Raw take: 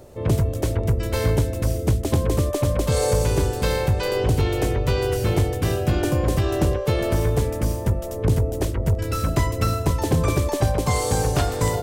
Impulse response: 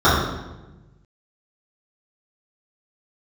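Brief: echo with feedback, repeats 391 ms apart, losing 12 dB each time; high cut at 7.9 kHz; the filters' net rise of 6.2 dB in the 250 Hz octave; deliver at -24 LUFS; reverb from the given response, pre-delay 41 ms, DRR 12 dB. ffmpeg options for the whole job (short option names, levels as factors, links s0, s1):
-filter_complex "[0:a]lowpass=7900,equalizer=f=250:t=o:g=9,aecho=1:1:391|782|1173:0.251|0.0628|0.0157,asplit=2[s0][s1];[1:a]atrim=start_sample=2205,adelay=41[s2];[s1][s2]afir=irnorm=-1:irlink=0,volume=0.0119[s3];[s0][s3]amix=inputs=2:normalize=0,volume=0.531"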